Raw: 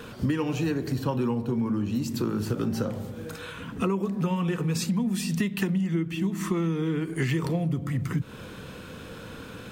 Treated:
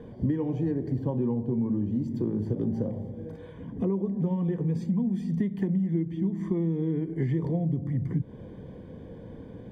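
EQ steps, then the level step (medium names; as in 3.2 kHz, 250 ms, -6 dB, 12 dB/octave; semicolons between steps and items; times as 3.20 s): boxcar filter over 33 samples; 0.0 dB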